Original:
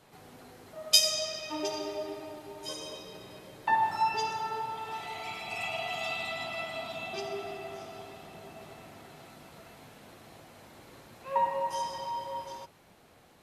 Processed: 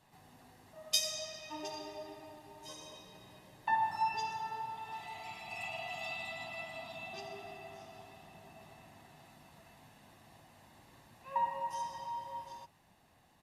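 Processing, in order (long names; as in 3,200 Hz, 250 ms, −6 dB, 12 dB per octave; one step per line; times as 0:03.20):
comb filter 1.1 ms, depth 51%
level −8.5 dB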